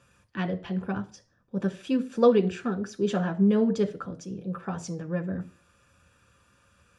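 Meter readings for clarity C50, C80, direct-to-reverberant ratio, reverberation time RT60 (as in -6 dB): 17.5 dB, 21.5 dB, 6.0 dB, 0.40 s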